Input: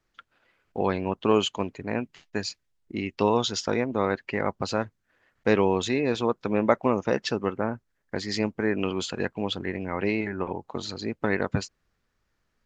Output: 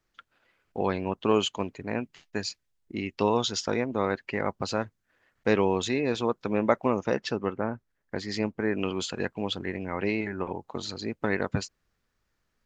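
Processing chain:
high-shelf EQ 4,400 Hz +2.5 dB, from 0:07.14 −4.5 dB, from 0:08.73 +3 dB
level −2 dB

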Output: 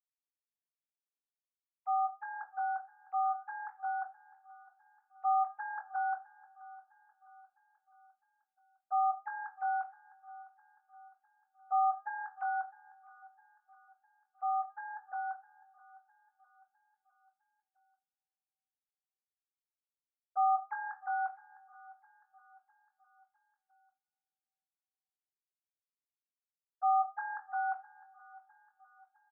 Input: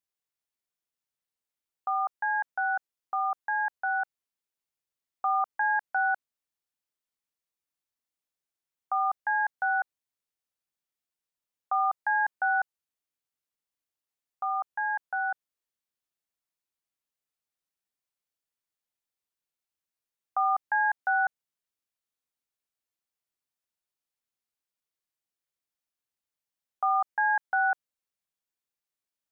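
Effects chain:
three sine waves on the formant tracks
Bessel low-pass filter 1,000 Hz, order 2
double-tracking delay 22 ms −7.5 dB
repeating echo 657 ms, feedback 52%, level −21 dB
convolution reverb, pre-delay 35 ms, DRR 11.5 dB
level −5 dB

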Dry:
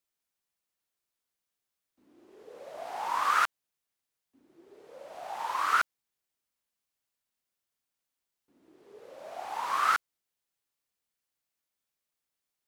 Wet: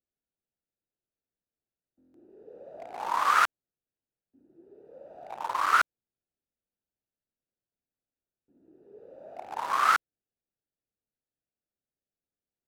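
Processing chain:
adaptive Wiener filter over 41 samples
buffer that repeats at 0:01.98, samples 1,024, times 6
level +3.5 dB

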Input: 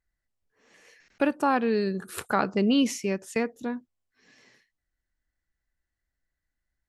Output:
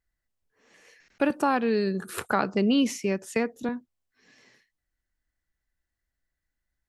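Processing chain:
0:01.30–0:03.69: multiband upward and downward compressor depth 40%

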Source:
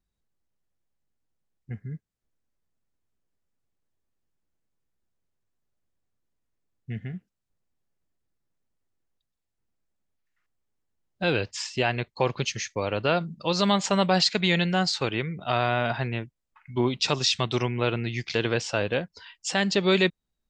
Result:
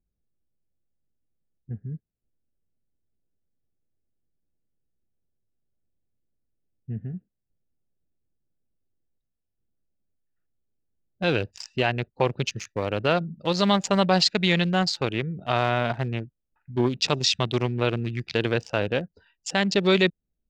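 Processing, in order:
adaptive Wiener filter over 41 samples
level +2 dB

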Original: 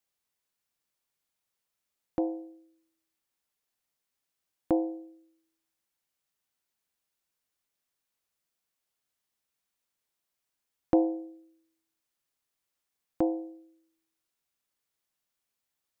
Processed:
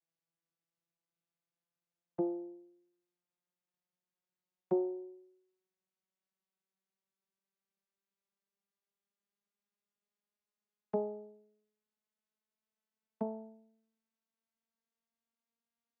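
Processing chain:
vocoder with a gliding carrier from E3, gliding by +6 semitones
in parallel at 0 dB: downward compressor, threshold −35 dBFS, peak gain reduction 14.5 dB
on the sum: level −8.5 dB

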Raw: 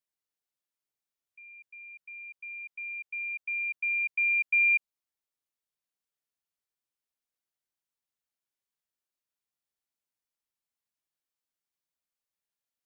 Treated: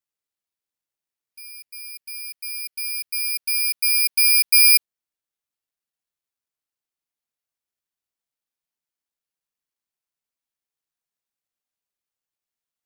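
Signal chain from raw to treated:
noise reduction from a noise print of the clip's start 10 dB
bad sample-rate conversion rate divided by 6×, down none, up zero stuff
level +2.5 dB

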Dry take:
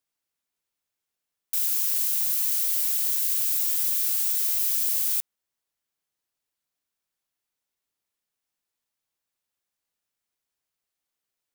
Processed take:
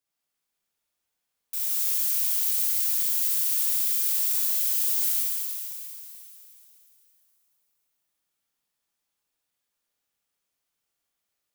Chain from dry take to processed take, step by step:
brickwall limiter −18 dBFS, peak gain reduction 6 dB
flutter between parallel walls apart 11.7 metres, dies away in 0.55 s
reverb with rising layers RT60 3 s, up +12 semitones, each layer −8 dB, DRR −4 dB
level −3 dB

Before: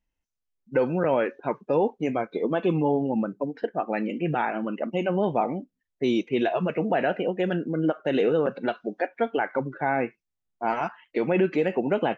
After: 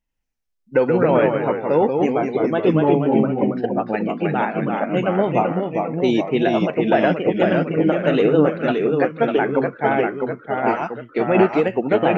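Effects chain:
delay with pitch and tempo change per echo 84 ms, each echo −1 semitone, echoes 3
expander for the loud parts 1.5 to 1, over −31 dBFS
level +7 dB

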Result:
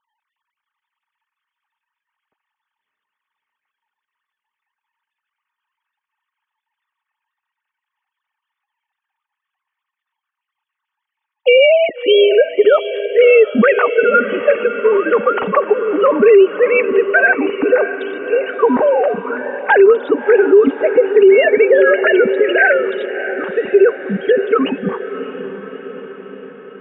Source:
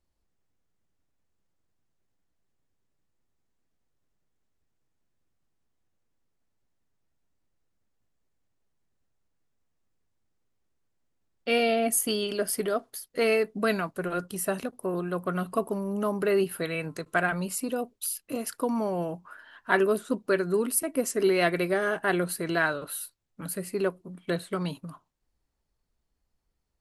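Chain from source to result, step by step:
three sine waves on the formant tracks
in parallel at +1 dB: downward compressor, threshold −35 dBFS, peak gain reduction 22.5 dB
on the sum: notch comb filter 340 Hz
on a send: feedback delay with all-pass diffusion 631 ms, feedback 60%, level −12.5 dB
on the sum: boost into a limiter +18.5 dB
level −1 dB

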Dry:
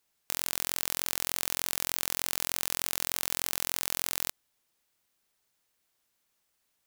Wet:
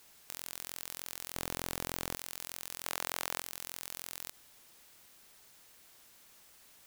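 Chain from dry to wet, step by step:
0:01.34–0:02.17: high-pass filter 520 Hz 6 dB per octave
0:02.85–0:03.40: parametric band 900 Hz −13.5 dB 0.87 octaves
brickwall limiter −13 dBFS, peak gain reduction 10 dB
wave folding −18 dBFS
level +16.5 dB

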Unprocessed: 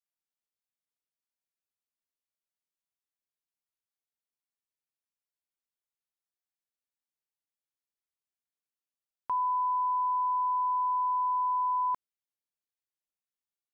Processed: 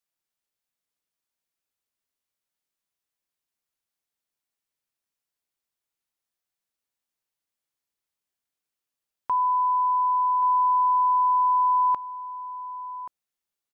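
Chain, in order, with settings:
single-tap delay 1,130 ms −13 dB
level +6 dB

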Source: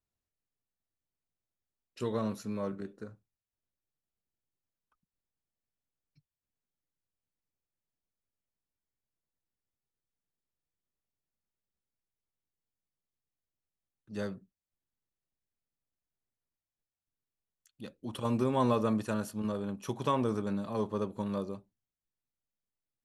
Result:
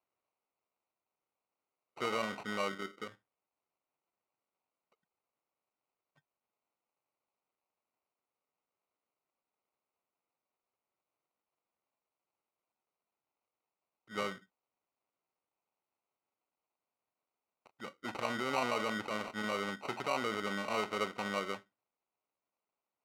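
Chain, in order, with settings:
brickwall limiter −27 dBFS, peak gain reduction 10 dB
decimation without filtering 26×
resonant band-pass 1,500 Hz, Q 0.66
level +7.5 dB

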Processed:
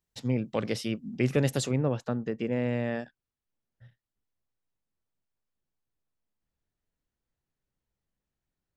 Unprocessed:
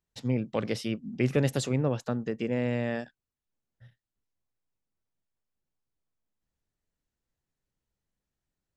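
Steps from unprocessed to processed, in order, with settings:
high-shelf EQ 5,200 Hz +3 dB, from 0:01.71 −8.5 dB

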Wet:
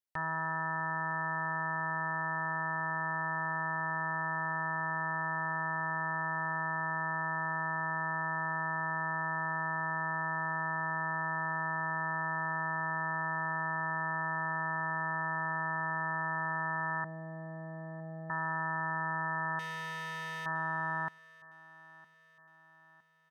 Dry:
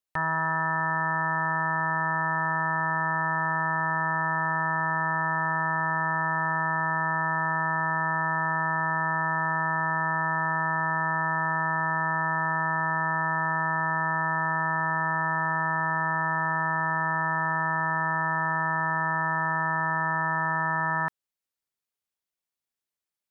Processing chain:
0:17.04–0:18.30: Chebyshev low-pass filter 740 Hz, order 6
0:19.59–0:20.46: gain into a clipping stage and back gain 29.5 dB
on a send: repeating echo 961 ms, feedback 49%, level −21 dB
on the sum: level −8 dB

